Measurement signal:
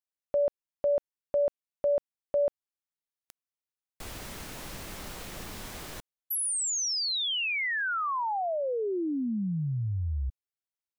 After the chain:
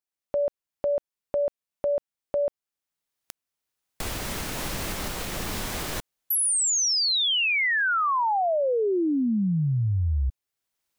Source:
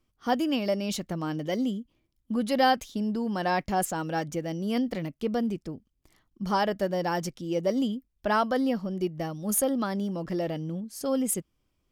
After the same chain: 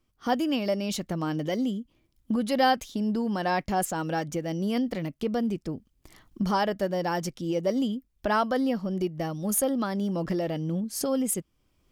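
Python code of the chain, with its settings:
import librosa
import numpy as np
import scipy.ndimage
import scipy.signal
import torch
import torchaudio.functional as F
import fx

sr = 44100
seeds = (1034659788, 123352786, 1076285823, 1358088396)

y = fx.recorder_agc(x, sr, target_db=-20.5, rise_db_per_s=14.0, max_gain_db=30)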